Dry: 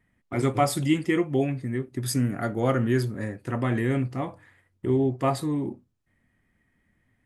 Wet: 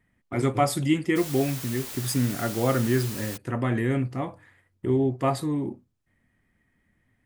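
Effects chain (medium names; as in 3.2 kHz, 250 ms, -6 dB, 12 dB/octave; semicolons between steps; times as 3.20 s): 1.15–3.36 s: added noise white -38 dBFS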